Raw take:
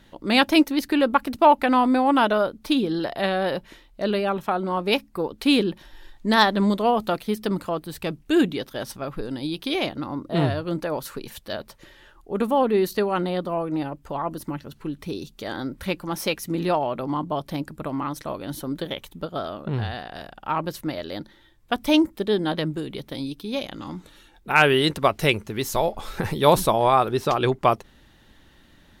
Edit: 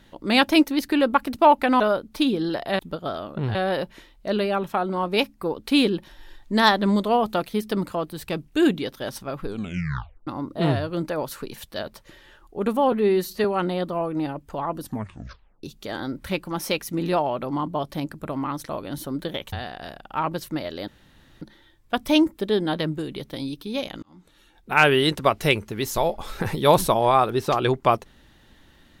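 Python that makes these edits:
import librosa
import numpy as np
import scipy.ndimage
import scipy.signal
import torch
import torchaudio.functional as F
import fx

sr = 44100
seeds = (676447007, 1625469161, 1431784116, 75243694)

y = fx.edit(x, sr, fx.cut(start_s=1.8, length_s=0.5),
    fx.tape_stop(start_s=9.19, length_s=0.82),
    fx.stretch_span(start_s=12.66, length_s=0.35, factor=1.5),
    fx.tape_stop(start_s=14.36, length_s=0.84),
    fx.move(start_s=19.09, length_s=0.76, to_s=3.29),
    fx.insert_room_tone(at_s=21.2, length_s=0.54),
    fx.fade_in_span(start_s=23.81, length_s=0.74), tone=tone)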